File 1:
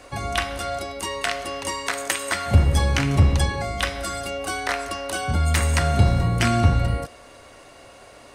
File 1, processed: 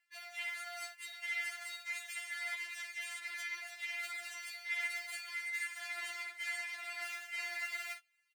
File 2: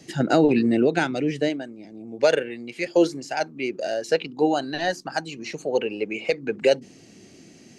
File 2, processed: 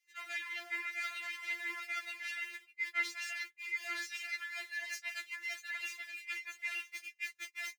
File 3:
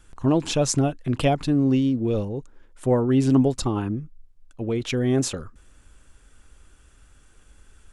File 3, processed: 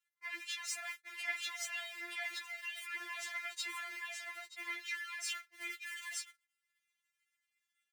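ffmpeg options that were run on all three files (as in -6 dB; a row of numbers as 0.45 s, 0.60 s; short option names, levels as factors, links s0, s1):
-af "aeval=exprs='val(0)+0.5*0.0224*sgn(val(0))':c=same,aecho=1:1:926:0.596,asoftclip=type=hard:threshold=0.0891,agate=range=0.00501:threshold=0.0447:ratio=16:detection=peak,alimiter=level_in=1.41:limit=0.0631:level=0:latency=1:release=77,volume=0.708,acontrast=30,highpass=f=2000:t=q:w=6.3,areverse,acompressor=threshold=0.0282:ratio=16,areverse,afftfilt=real='re*4*eq(mod(b,16),0)':imag='im*4*eq(mod(b,16),0)':win_size=2048:overlap=0.75,volume=0.708"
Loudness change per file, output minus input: -17.0 LU, -15.0 LU, -18.0 LU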